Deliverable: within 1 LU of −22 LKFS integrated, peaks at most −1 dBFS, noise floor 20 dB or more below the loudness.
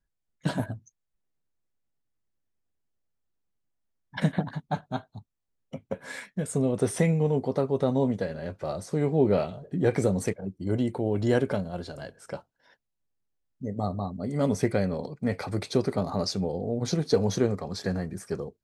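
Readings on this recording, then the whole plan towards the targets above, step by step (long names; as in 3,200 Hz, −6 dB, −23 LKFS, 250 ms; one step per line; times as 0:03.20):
integrated loudness −28.5 LKFS; sample peak −9.5 dBFS; target loudness −22.0 LKFS
→ level +6.5 dB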